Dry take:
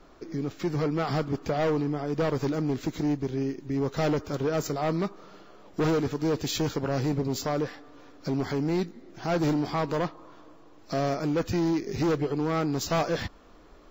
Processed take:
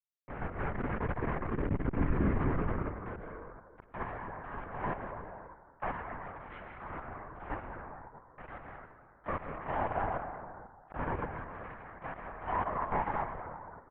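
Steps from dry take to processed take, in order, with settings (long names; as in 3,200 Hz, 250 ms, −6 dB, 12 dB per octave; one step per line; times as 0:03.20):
spectrum averaged block by block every 100 ms
high-pass filter sweep 170 Hz → 1,100 Hz, 0:00.35–0:03.93
bit reduction 5 bits
single-sideband voice off tune −280 Hz 340–2,300 Hz
single-tap delay 113 ms −13.5 dB
dense smooth reverb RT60 1.9 s, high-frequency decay 0.3×, pre-delay 120 ms, DRR 2 dB
linear-prediction vocoder at 8 kHz whisper
in parallel at 0 dB: output level in coarse steps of 16 dB
0:00.67–0:01.97: on the sum: saturating transformer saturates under 140 Hz
level −8 dB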